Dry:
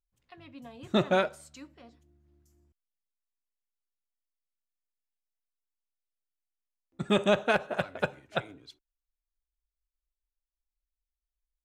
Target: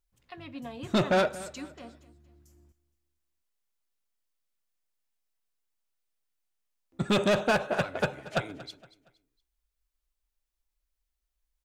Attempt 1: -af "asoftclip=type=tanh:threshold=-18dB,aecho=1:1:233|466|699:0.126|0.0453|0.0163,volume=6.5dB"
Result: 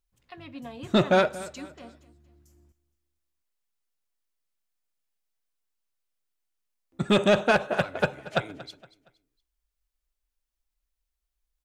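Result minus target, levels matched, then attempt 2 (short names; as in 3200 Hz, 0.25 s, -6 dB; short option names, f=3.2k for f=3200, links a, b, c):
soft clip: distortion -7 dB
-af "asoftclip=type=tanh:threshold=-25.5dB,aecho=1:1:233|466|699:0.126|0.0453|0.0163,volume=6.5dB"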